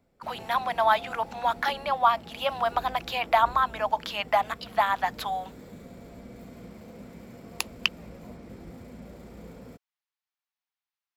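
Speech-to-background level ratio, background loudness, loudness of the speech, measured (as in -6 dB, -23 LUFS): 18.5 dB, -45.5 LUFS, -27.0 LUFS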